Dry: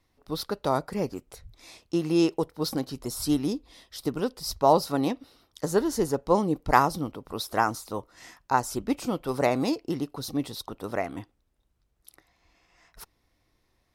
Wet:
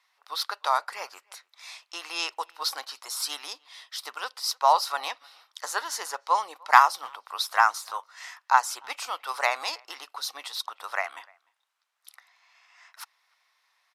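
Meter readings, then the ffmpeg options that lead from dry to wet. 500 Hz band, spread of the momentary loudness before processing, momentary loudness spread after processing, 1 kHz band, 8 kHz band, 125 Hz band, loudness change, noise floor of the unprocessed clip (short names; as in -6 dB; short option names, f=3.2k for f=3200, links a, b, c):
-10.0 dB, 13 LU, 20 LU, +4.0 dB, +3.0 dB, under -35 dB, +0.5 dB, -72 dBFS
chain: -filter_complex "[0:a]highpass=f=950:w=0.5412,highpass=f=950:w=1.3066,highshelf=f=7.2k:g=-10,asplit=2[a][b];[b]acontrast=85,volume=-1.5dB[c];[a][c]amix=inputs=2:normalize=0,aresample=32000,aresample=44100,asplit=2[d][e];[e]adelay=300,highpass=300,lowpass=3.4k,asoftclip=type=hard:threshold=-10.5dB,volume=-28dB[f];[d][f]amix=inputs=2:normalize=0,volume=-1dB"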